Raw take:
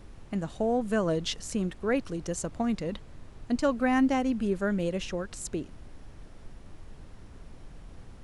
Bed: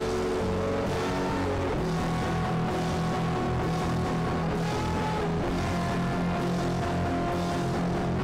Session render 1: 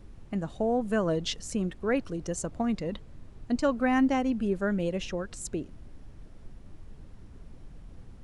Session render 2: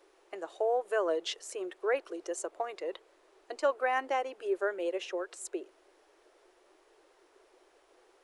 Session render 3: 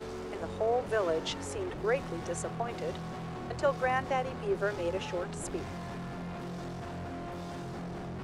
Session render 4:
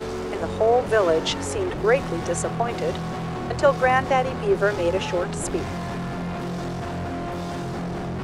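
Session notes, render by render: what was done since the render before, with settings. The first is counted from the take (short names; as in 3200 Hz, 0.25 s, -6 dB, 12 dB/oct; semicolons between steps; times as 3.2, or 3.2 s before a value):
denoiser 6 dB, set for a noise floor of -49 dBFS
elliptic high-pass 360 Hz, stop band 40 dB; dynamic EQ 5400 Hz, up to -5 dB, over -55 dBFS, Q 0.98
add bed -12 dB
gain +10.5 dB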